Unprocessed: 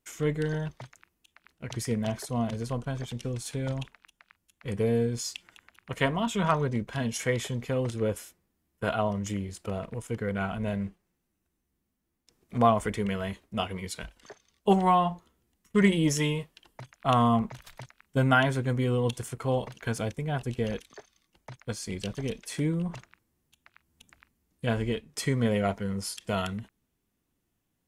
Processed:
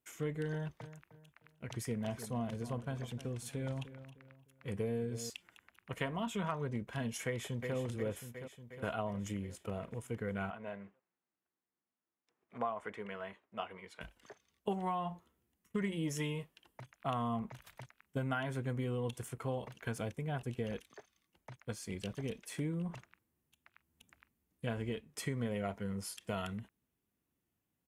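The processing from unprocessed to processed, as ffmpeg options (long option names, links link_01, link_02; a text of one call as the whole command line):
ffmpeg -i in.wav -filter_complex "[0:a]asettb=1/sr,asplit=3[link_01][link_02][link_03];[link_01]atrim=end=0.504[link_04];[link_02]atrim=start=0.5:end=5.3,asetpts=PTS-STARTPTS,afade=type=in:duration=0.004:curve=qsin,afade=type=out:start_time=4.796:duration=0.004:curve=qsin,asplit=2[link_05][link_06];[link_06]adelay=305,lowpass=frequency=2100:poles=1,volume=-14dB,asplit=2[link_07][link_08];[link_08]adelay=305,lowpass=frequency=2100:poles=1,volume=0.36,asplit=2[link_09][link_10];[link_10]adelay=305,lowpass=frequency=2100:poles=1,volume=0.36[link_11];[link_05][link_07][link_09][link_11]amix=inputs=4:normalize=0,atrim=end_sample=211680[link_12];[link_03]atrim=start=5.296[link_13];[link_04][link_12]acrossfade=duration=0.004:curve1=hsin:curve2=qsin[link_14];[link_14][link_13]acrossfade=duration=0.004:curve1=qsin:curve2=hsin,asplit=2[link_15][link_16];[link_16]afade=type=in:start_time=7.26:duration=0.01,afade=type=out:start_time=7.75:duration=0.01,aecho=0:1:360|720|1080|1440|1800|2160|2520|2880|3240:0.421697|0.274103|0.178167|0.115808|0.0752755|0.048929|0.0318039|0.0206725|0.0134371[link_17];[link_15][link_17]amix=inputs=2:normalize=0,asettb=1/sr,asplit=3[link_18][link_19][link_20];[link_18]atrim=end=10.504[link_21];[link_19]atrim=start=10.5:end=14.01,asetpts=PTS-STARTPTS,afade=type=in:duration=0.004:curve=qsin,afade=type=out:start_time=3.506:duration=0.004:curve=qsin,bandpass=frequency=1100:width_type=q:width=0.72[link_22];[link_20]atrim=start=14.006[link_23];[link_21][link_22]acrossfade=duration=0.004:curve1=hsin:curve2=qsin[link_24];[link_24][link_23]acrossfade=duration=0.004:curve1=qsin:curve2=hsin,highpass=57,acompressor=threshold=-26dB:ratio=6,firequalizer=gain_entry='entry(2700,0);entry(4300,-5);entry(13000,2)':delay=0.05:min_phase=1,volume=-6.5dB" out.wav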